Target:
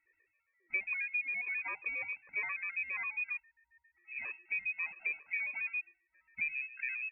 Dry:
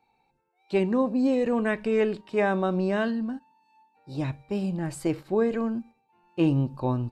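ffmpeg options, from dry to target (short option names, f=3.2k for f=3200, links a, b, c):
-af "acompressor=threshold=-29dB:ratio=6,lowpass=f=2.3k:t=q:w=0.5098,lowpass=f=2.3k:t=q:w=0.6013,lowpass=f=2.3k:t=q:w=0.9,lowpass=f=2.3k:t=q:w=2.563,afreqshift=-2700,afftfilt=real='re*gt(sin(2*PI*7.4*pts/sr)*(1-2*mod(floor(b*sr/1024/320),2)),0)':imag='im*gt(sin(2*PI*7.4*pts/sr)*(1-2*mod(floor(b*sr/1024/320),2)),0)':win_size=1024:overlap=0.75,volume=-2dB"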